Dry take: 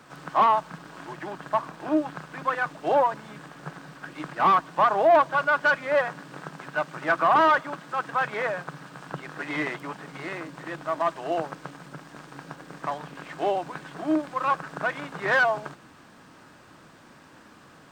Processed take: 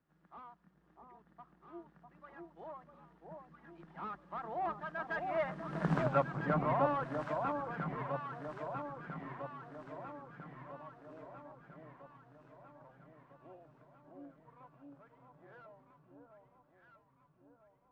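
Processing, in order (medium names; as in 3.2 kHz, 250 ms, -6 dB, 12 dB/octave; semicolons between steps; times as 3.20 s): Doppler pass-by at 5.95 s, 33 m/s, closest 2.5 m; RIAA curve playback; echo whose repeats swap between lows and highs 650 ms, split 1 kHz, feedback 71%, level -2.5 dB; trim +5 dB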